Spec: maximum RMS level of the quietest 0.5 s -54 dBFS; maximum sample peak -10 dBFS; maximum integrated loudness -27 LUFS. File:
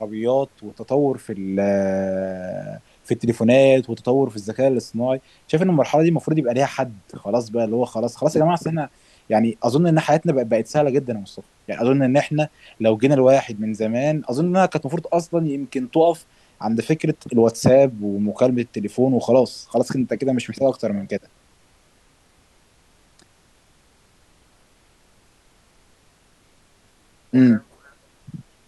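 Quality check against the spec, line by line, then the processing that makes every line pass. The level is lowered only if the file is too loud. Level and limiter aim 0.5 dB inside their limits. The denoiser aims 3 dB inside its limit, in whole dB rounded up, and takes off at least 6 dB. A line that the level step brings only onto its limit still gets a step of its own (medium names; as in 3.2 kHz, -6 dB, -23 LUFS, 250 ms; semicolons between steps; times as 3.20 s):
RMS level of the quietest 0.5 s -57 dBFS: pass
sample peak -4.0 dBFS: fail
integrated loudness -20.0 LUFS: fail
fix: trim -7.5 dB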